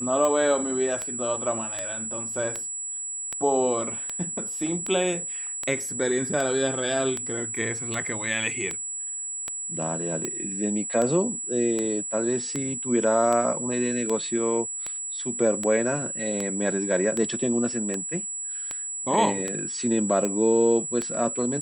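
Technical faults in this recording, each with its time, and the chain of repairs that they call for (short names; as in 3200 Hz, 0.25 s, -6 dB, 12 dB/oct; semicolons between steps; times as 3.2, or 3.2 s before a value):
tick 78 rpm -14 dBFS
tone 7800 Hz -30 dBFS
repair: de-click; notch 7800 Hz, Q 30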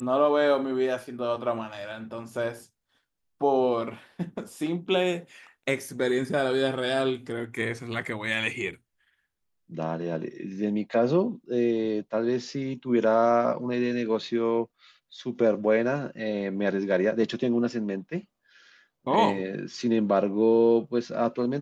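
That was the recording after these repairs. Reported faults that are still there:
none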